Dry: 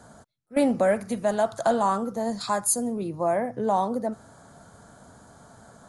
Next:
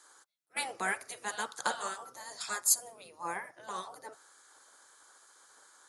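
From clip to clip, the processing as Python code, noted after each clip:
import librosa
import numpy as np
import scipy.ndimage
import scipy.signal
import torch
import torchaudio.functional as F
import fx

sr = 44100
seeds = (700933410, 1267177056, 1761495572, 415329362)

y = fx.spec_gate(x, sr, threshold_db=-10, keep='weak')
y = fx.highpass(y, sr, hz=1500.0, slope=6)
y = fx.upward_expand(y, sr, threshold_db=-42.0, expansion=1.5)
y = y * librosa.db_to_amplitude(6.5)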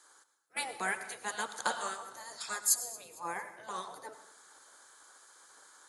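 y = fx.rider(x, sr, range_db=3, speed_s=2.0)
y = fx.echo_feedback(y, sr, ms=227, feedback_pct=47, wet_db=-21.0)
y = fx.rev_plate(y, sr, seeds[0], rt60_s=0.57, hf_ratio=0.95, predelay_ms=85, drr_db=12.5)
y = y * librosa.db_to_amplitude(-1.5)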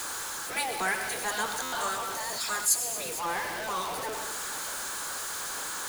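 y = x + 0.5 * 10.0 ** (-31.5 / 20.0) * np.sign(x)
y = fx.buffer_glitch(y, sr, at_s=(1.62,), block=512, repeats=8)
y = y * librosa.db_to_amplitude(1.5)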